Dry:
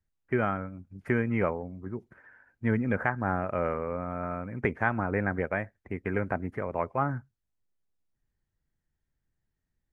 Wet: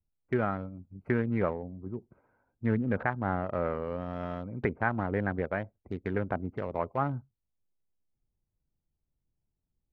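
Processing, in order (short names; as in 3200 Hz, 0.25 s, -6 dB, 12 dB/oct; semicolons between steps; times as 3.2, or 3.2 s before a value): Wiener smoothing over 25 samples; treble ducked by the level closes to 2100 Hz, closed at -27 dBFS; gain -1 dB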